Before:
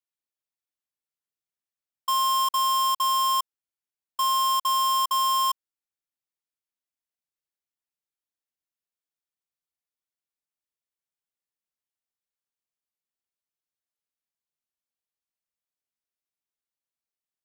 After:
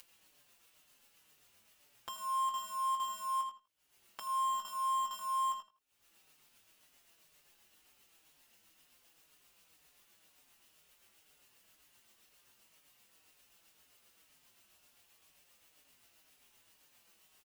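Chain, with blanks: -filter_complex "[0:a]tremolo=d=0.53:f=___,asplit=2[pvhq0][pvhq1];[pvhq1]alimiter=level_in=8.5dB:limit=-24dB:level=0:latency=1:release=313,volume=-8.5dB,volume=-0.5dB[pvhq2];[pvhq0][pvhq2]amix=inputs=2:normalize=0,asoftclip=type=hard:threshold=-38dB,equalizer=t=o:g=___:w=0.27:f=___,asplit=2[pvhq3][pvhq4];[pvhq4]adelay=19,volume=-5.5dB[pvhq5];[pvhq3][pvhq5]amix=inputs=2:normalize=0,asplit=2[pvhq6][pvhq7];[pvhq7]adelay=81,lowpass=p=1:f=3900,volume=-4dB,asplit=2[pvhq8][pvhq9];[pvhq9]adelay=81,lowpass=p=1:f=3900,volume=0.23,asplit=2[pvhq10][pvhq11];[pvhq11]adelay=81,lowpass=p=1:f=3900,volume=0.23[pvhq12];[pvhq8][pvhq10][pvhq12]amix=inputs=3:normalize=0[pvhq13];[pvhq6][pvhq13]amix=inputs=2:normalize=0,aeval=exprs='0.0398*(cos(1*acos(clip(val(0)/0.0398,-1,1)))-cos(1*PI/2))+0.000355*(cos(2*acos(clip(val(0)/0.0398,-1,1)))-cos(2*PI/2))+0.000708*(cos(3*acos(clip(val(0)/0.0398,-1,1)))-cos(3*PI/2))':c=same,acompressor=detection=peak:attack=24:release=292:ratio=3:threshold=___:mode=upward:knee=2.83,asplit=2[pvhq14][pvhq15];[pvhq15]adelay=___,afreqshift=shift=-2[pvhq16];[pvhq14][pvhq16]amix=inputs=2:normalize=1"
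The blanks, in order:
7.6, 6.5, 2800, -49dB, 5.3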